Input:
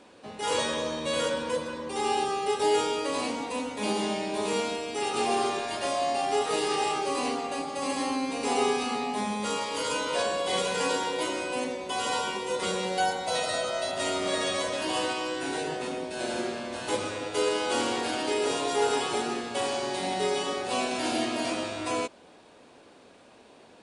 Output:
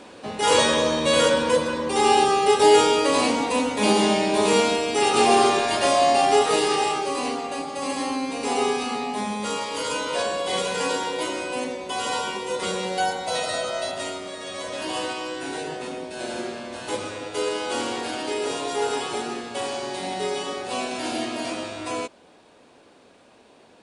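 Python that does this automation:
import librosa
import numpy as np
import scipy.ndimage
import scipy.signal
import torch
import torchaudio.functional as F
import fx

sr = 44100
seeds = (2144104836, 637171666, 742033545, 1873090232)

y = fx.gain(x, sr, db=fx.line((6.24, 9.5), (7.13, 2.5), (13.88, 2.5), (14.36, -8.0), (14.8, 0.5)))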